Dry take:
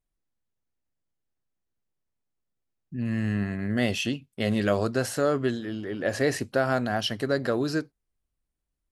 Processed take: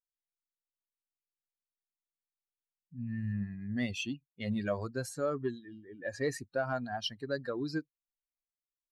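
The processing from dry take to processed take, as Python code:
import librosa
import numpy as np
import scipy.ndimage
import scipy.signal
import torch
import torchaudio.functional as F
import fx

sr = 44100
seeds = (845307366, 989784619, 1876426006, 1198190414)

p1 = fx.bin_expand(x, sr, power=2.0)
p2 = fx.env_lowpass(p1, sr, base_hz=2900.0, full_db=-26.0)
p3 = 10.0 ** (-24.5 / 20.0) * np.tanh(p2 / 10.0 ** (-24.5 / 20.0))
p4 = p2 + (p3 * 10.0 ** (-11.0 / 20.0))
y = p4 * 10.0 ** (-6.5 / 20.0)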